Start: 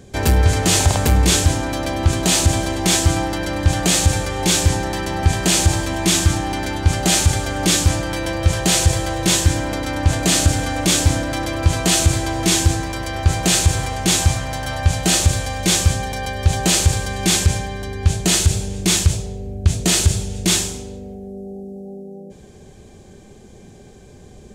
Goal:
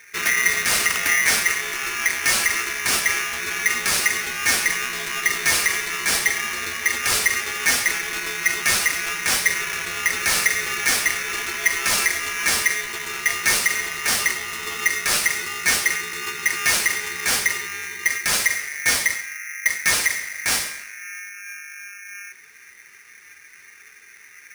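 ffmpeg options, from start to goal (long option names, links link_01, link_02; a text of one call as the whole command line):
ffmpeg -i in.wav -af "flanger=delay=5.2:depth=3.1:regen=38:speed=0.9:shape=sinusoidal,aeval=exprs='val(0)*sgn(sin(2*PI*2000*n/s))':channel_layout=same" out.wav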